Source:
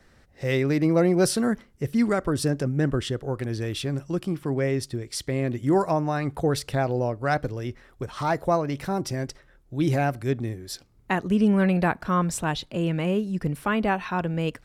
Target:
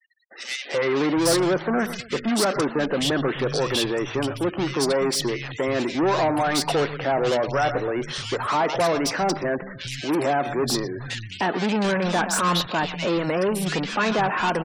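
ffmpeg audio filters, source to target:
-filter_complex "[0:a]asplit=2[a][b];[b]adelay=122,lowpass=f=4.8k:p=1,volume=-23dB,asplit=2[c][d];[d]adelay=122,lowpass=f=4.8k:p=1,volume=0.36[e];[c][e]amix=inputs=2:normalize=0[f];[a][f]amix=inputs=2:normalize=0,asplit=2[g][h];[h]highpass=f=720:p=1,volume=30dB,asoftclip=type=tanh:threshold=-9.5dB[i];[g][i]amix=inputs=2:normalize=0,lowpass=f=5.4k:p=1,volume=-6dB,lowshelf=f=88:g=-8.5,acrossover=split=150|2200[j][k][l];[k]adelay=310[m];[j]adelay=740[n];[n][m][l]amix=inputs=3:normalize=0,afftfilt=real='re*gte(hypot(re,im),0.0178)':imag='im*gte(hypot(re,im),0.0178)':win_size=1024:overlap=0.75,volume=-4dB"

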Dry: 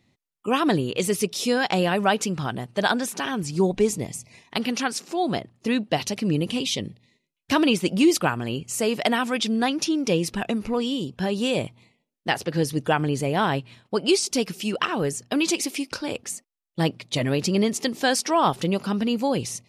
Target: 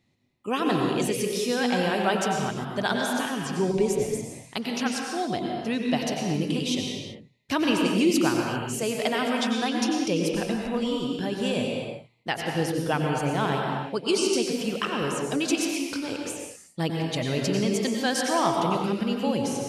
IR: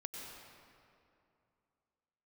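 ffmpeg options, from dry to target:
-filter_complex "[1:a]atrim=start_sample=2205,afade=t=out:st=0.45:d=0.01,atrim=end_sample=20286[a];[0:a][a]afir=irnorm=-1:irlink=0"

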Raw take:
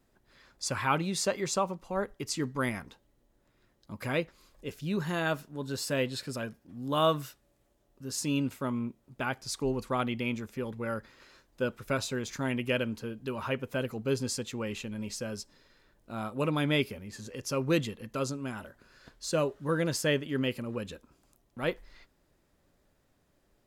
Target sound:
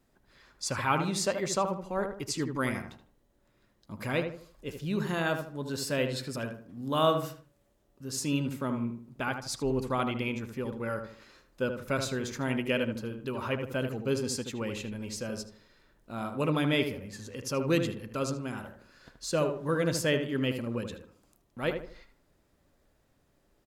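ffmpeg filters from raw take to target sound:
-filter_complex "[0:a]asplit=2[a][b];[b]adelay=77,lowpass=f=1.7k:p=1,volume=-6dB,asplit=2[c][d];[d]adelay=77,lowpass=f=1.7k:p=1,volume=0.37,asplit=2[e][f];[f]adelay=77,lowpass=f=1.7k:p=1,volume=0.37,asplit=2[g][h];[h]adelay=77,lowpass=f=1.7k:p=1,volume=0.37[i];[a][c][e][g][i]amix=inputs=5:normalize=0"

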